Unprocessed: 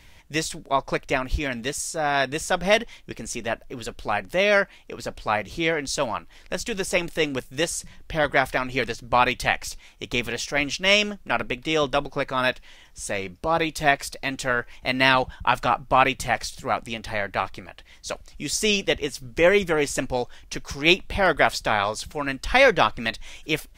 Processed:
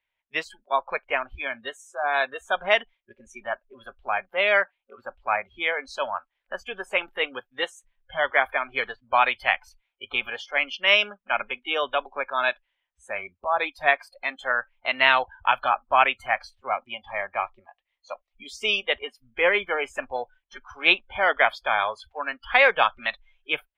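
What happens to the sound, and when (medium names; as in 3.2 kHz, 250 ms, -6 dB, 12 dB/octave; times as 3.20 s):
16.68–18.89 s: band-stop 1.5 kHz, Q 5.4
whole clip: resonant high shelf 3.9 kHz -7.5 dB, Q 1.5; spectral noise reduction 28 dB; three-band isolator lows -18 dB, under 510 Hz, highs -13 dB, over 4.8 kHz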